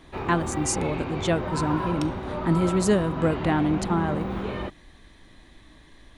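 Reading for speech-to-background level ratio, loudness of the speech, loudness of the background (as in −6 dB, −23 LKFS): 5.0 dB, −26.0 LKFS, −31.0 LKFS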